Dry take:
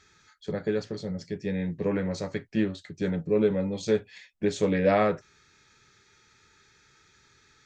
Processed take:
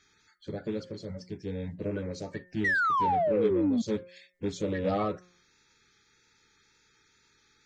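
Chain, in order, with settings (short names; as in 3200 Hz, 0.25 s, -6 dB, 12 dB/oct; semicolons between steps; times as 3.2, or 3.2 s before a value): bin magnitudes rounded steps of 30 dB; de-hum 179.5 Hz, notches 13; wow and flutter 29 cents; painted sound fall, 2.64–3.82, 220–2000 Hz -20 dBFS; in parallel at -5.5 dB: soft clip -23 dBFS, distortion -10 dB; on the sum: gain -8 dB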